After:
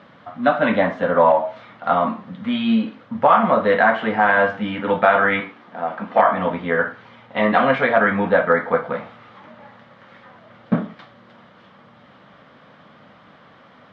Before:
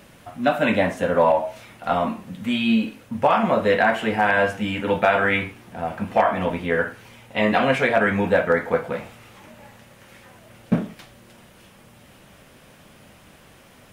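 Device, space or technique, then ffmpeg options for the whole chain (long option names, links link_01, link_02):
kitchen radio: -filter_complex "[0:a]asettb=1/sr,asplit=3[link_01][link_02][link_03];[link_01]atrim=end=5.404[link_04];[link_02]atrim=start=5.4:end=6.19,asetpts=PTS-STARTPTS,afade=type=in:duration=0.004:curve=qsin,afade=type=out:start_time=0.786:duration=0.004:curve=qsin,highpass=230[link_05];[link_03]atrim=start=6.186[link_06];[link_04][link_05]acrossfade=duration=0.004:curve1=hsin:curve2=qsin[link_07];[link_07][link_06]acrossfade=duration=0.004:curve1=qsin:curve2=hsin,highpass=160,equalizer=frequency=370:width_type=q:width=4:gain=-7,equalizer=frequency=1200:width_type=q:width=4:gain=6,equalizer=frequency=2600:width_type=q:width=4:gain=-10,lowpass=frequency=3600:width=0.5412,lowpass=frequency=3600:width=1.3066,volume=3dB"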